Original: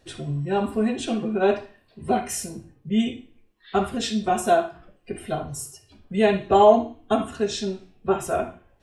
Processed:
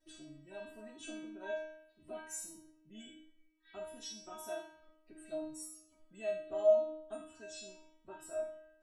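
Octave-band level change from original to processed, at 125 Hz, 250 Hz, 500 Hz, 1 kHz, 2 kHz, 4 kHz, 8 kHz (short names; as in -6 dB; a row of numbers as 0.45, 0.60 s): under -30 dB, -25.0 dB, -14.0 dB, -29.0 dB, -18.0 dB, -18.5 dB, -13.5 dB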